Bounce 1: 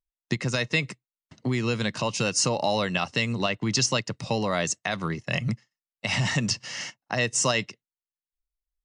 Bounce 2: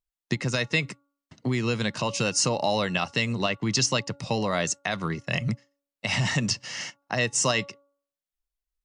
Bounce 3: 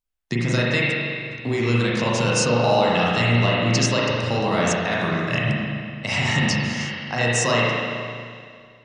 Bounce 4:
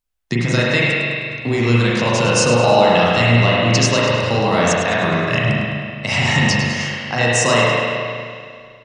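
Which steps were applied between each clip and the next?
hum removal 282.6 Hz, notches 5
spring reverb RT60 2.2 s, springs 34/42 ms, chirp 60 ms, DRR −6 dB
repeating echo 104 ms, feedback 46%, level −10 dB; level +4.5 dB

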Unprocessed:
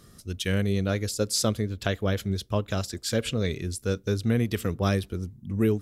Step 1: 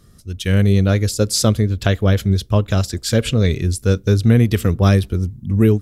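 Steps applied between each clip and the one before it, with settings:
low-shelf EQ 130 Hz +10 dB
automatic gain control gain up to 11.5 dB
level −1.5 dB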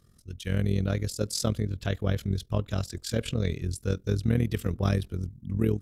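amplitude modulation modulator 42 Hz, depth 60%
level −9 dB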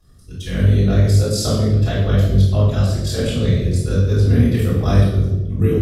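convolution reverb RT60 1.1 s, pre-delay 3 ms, DRR −11.5 dB
level −7 dB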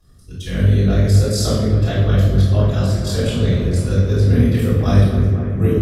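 bucket-brigade delay 250 ms, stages 4,096, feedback 79%, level −10.5 dB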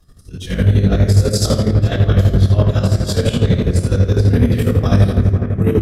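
square-wave tremolo 12 Hz, depth 60%, duty 50%
in parallel at −11 dB: wave folding −12.5 dBFS
on the sum: level +2.5 dB

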